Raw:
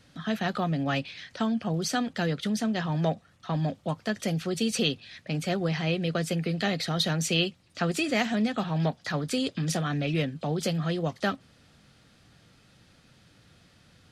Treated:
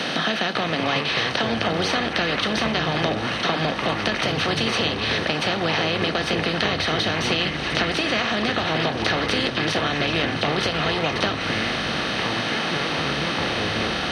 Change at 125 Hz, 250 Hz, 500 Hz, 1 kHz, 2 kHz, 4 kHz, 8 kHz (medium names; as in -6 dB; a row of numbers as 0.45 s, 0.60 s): +1.0 dB, +2.5 dB, +7.0 dB, +10.0 dB, +12.5 dB, +11.5 dB, +1.5 dB